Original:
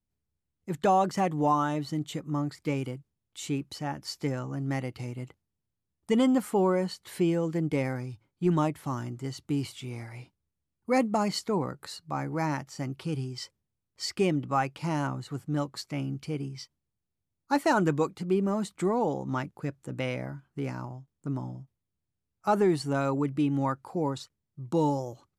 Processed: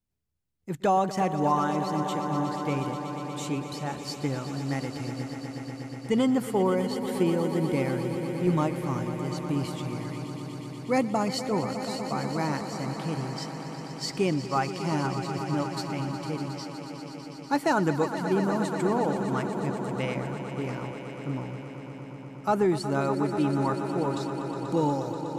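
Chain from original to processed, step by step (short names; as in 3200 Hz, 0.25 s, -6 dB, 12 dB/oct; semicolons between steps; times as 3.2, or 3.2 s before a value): swelling echo 0.121 s, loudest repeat 5, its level -12.5 dB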